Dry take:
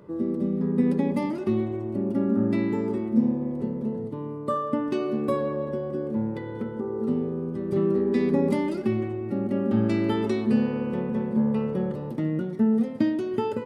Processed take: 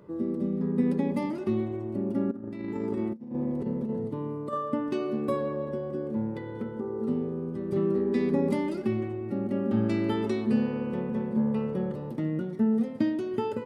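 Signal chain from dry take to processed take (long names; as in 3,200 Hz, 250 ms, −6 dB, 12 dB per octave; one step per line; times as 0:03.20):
0:02.31–0:04.53: compressor whose output falls as the input rises −28 dBFS, ratio −0.5
level −3 dB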